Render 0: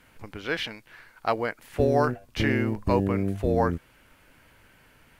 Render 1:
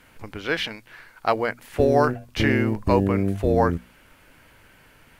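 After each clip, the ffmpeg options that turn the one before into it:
ffmpeg -i in.wav -af "bandreject=frequency=60:width_type=h:width=6,bandreject=frequency=120:width_type=h:width=6,bandreject=frequency=180:width_type=h:width=6,bandreject=frequency=240:width_type=h:width=6,volume=4dB" out.wav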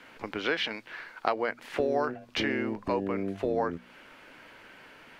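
ffmpeg -i in.wav -filter_complex "[0:a]acompressor=threshold=-29dB:ratio=4,acrossover=split=200 5700:gain=0.141 1 0.178[link_01][link_02][link_03];[link_01][link_02][link_03]amix=inputs=3:normalize=0,volume=3.5dB" out.wav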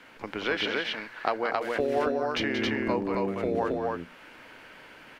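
ffmpeg -i in.wav -af "aecho=1:1:180.8|271.1:0.398|0.794" out.wav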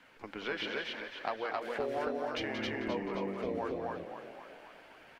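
ffmpeg -i in.wav -filter_complex "[0:a]flanger=delay=1:depth=5.1:regen=-49:speed=0.77:shape=triangular,asplit=8[link_01][link_02][link_03][link_04][link_05][link_06][link_07][link_08];[link_02]adelay=263,afreqshift=47,volume=-9dB[link_09];[link_03]adelay=526,afreqshift=94,volume=-14dB[link_10];[link_04]adelay=789,afreqshift=141,volume=-19.1dB[link_11];[link_05]adelay=1052,afreqshift=188,volume=-24.1dB[link_12];[link_06]adelay=1315,afreqshift=235,volume=-29.1dB[link_13];[link_07]adelay=1578,afreqshift=282,volume=-34.2dB[link_14];[link_08]adelay=1841,afreqshift=329,volume=-39.2dB[link_15];[link_01][link_09][link_10][link_11][link_12][link_13][link_14][link_15]amix=inputs=8:normalize=0,volume=-4.5dB" out.wav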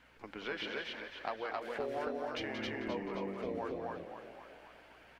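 ffmpeg -i in.wav -af "aeval=exprs='val(0)+0.000398*(sin(2*PI*60*n/s)+sin(2*PI*2*60*n/s)/2+sin(2*PI*3*60*n/s)/3+sin(2*PI*4*60*n/s)/4+sin(2*PI*5*60*n/s)/5)':channel_layout=same,volume=-3dB" out.wav

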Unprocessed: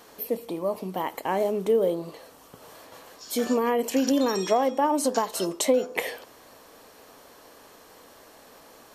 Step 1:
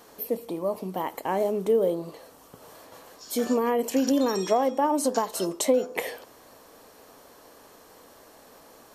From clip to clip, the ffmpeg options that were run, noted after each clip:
ffmpeg -i in.wav -af "equalizer=frequency=2700:width_type=o:width=1.9:gain=-3.5" out.wav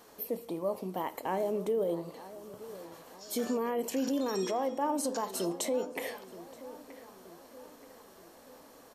ffmpeg -i in.wav -filter_complex "[0:a]alimiter=limit=-18.5dB:level=0:latency=1:release=38,flanger=delay=4.7:depth=7:regen=90:speed=0.28:shape=sinusoidal,asplit=2[link_01][link_02];[link_02]adelay=926,lowpass=frequency=1900:poles=1,volume=-15.5dB,asplit=2[link_03][link_04];[link_04]adelay=926,lowpass=frequency=1900:poles=1,volume=0.54,asplit=2[link_05][link_06];[link_06]adelay=926,lowpass=frequency=1900:poles=1,volume=0.54,asplit=2[link_07][link_08];[link_08]adelay=926,lowpass=frequency=1900:poles=1,volume=0.54,asplit=2[link_09][link_10];[link_10]adelay=926,lowpass=frequency=1900:poles=1,volume=0.54[link_11];[link_01][link_03][link_05][link_07][link_09][link_11]amix=inputs=6:normalize=0" out.wav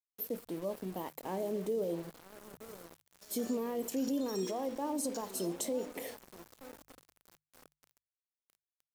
ffmpeg -i in.wav -af "equalizer=frequency=1500:width=0.4:gain=-9.5,aeval=exprs='val(0)*gte(abs(val(0)),0.00447)':channel_layout=same,bandreject=frequency=50:width_type=h:width=6,bandreject=frequency=100:width_type=h:width=6,bandreject=frequency=150:width_type=h:width=6" out.wav

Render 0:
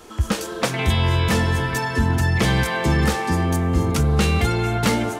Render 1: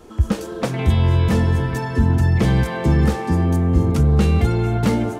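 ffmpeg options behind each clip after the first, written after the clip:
ffmpeg -i in.wav -af "tiltshelf=frequency=760:gain=6,volume=-2dB" out.wav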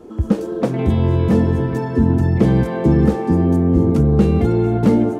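ffmpeg -i in.wav -af "equalizer=frequency=310:width=0.39:gain=15,volume=-8dB" out.wav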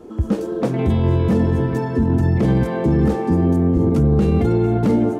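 ffmpeg -i in.wav -af "alimiter=limit=-9dB:level=0:latency=1:release=14" out.wav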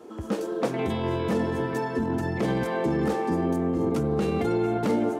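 ffmpeg -i in.wav -af "highpass=frequency=630:poles=1" out.wav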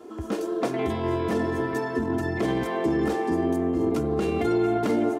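ffmpeg -i in.wav -af "aecho=1:1:2.9:0.47" out.wav

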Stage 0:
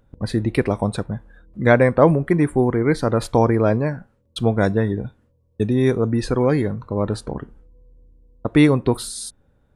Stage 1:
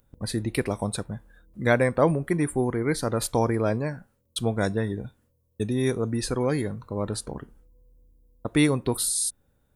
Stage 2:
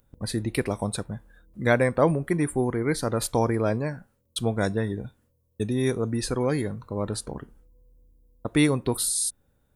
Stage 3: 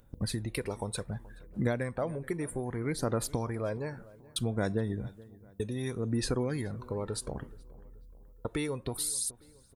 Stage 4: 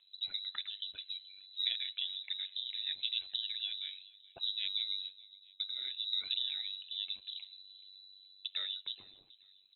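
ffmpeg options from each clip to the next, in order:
ffmpeg -i in.wav -af "aemphasis=mode=production:type=75fm,volume=-6.5dB" out.wav
ffmpeg -i in.wav -af anull out.wav
ffmpeg -i in.wav -filter_complex "[0:a]acompressor=threshold=-32dB:ratio=4,aphaser=in_gain=1:out_gain=1:delay=2.3:decay=0.42:speed=0.64:type=sinusoidal,asplit=2[link_01][link_02];[link_02]adelay=427,lowpass=frequency=2100:poles=1,volume=-20.5dB,asplit=2[link_03][link_04];[link_04]adelay=427,lowpass=frequency=2100:poles=1,volume=0.47,asplit=2[link_05][link_06];[link_06]adelay=427,lowpass=frequency=2100:poles=1,volume=0.47[link_07];[link_01][link_03][link_05][link_07]amix=inputs=4:normalize=0" out.wav
ffmpeg -i in.wav -af "lowpass=frequency=3400:width_type=q:width=0.5098,lowpass=frequency=3400:width_type=q:width=0.6013,lowpass=frequency=3400:width_type=q:width=0.9,lowpass=frequency=3400:width_type=q:width=2.563,afreqshift=-4000,tremolo=f=96:d=0.75,highshelf=frequency=2300:gain=9,volume=-9dB" out.wav

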